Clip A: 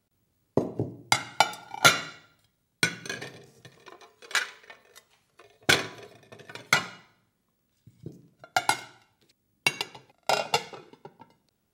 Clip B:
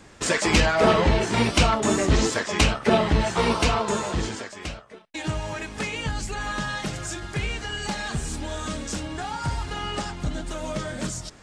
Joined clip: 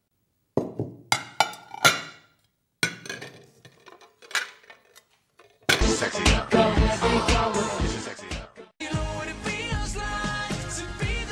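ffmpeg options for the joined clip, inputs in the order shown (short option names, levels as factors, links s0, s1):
-filter_complex "[0:a]apad=whole_dur=11.31,atrim=end=11.31,atrim=end=5.812[s0];[1:a]atrim=start=2.148:end=7.65[s1];[s0][s1]acrossfade=d=0.004:c1=hsin:c2=hsin"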